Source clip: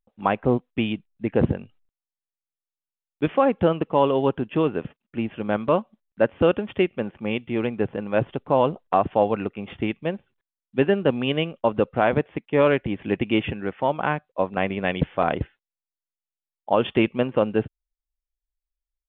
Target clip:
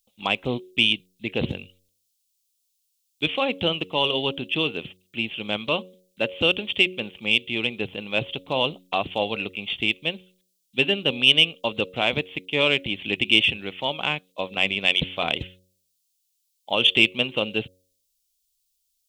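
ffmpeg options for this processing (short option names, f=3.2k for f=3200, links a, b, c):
-filter_complex "[0:a]acrossover=split=1500[a][b];[a]bandreject=f=92.14:t=h:w=4,bandreject=f=184.28:t=h:w=4,bandreject=f=276.42:t=h:w=4,bandreject=f=368.56:t=h:w=4,bandreject=f=460.7:t=h:w=4,bandreject=f=552.84:t=h:w=4[c];[b]aexciter=amount=14.2:drive=7.9:freq=2.5k[d];[c][d]amix=inputs=2:normalize=0,volume=-6dB"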